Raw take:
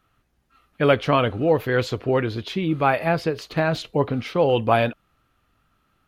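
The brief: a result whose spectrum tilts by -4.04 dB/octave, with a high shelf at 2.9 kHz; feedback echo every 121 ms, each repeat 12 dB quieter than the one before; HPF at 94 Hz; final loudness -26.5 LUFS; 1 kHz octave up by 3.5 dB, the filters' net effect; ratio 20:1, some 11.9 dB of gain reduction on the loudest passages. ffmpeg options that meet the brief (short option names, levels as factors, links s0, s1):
-af "highpass=94,equalizer=f=1000:t=o:g=4,highshelf=f=2900:g=6,acompressor=threshold=0.0794:ratio=20,aecho=1:1:121|242|363:0.251|0.0628|0.0157,volume=1.19"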